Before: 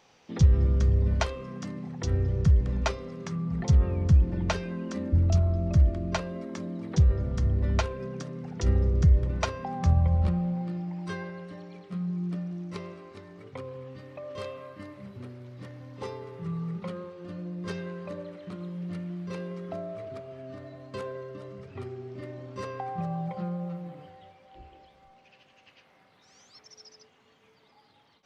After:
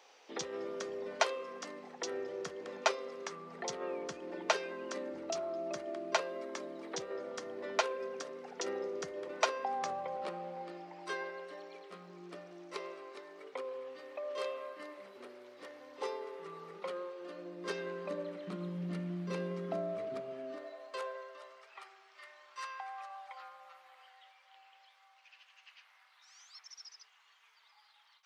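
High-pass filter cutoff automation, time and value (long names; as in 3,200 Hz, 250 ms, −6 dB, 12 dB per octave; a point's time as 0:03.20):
high-pass filter 24 dB per octave
0:17.20 380 Hz
0:18.60 180 Hz
0:20.28 180 Hz
0:20.77 480 Hz
0:22.11 1,000 Hz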